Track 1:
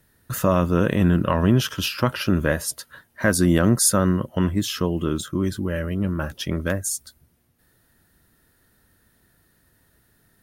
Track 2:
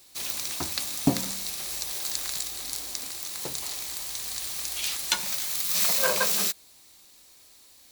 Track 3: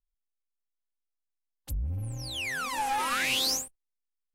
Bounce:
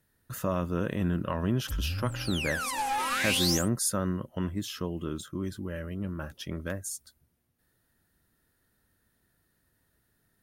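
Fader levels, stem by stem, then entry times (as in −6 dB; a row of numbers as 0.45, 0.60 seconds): −10.5 dB, muted, −0.5 dB; 0.00 s, muted, 0.00 s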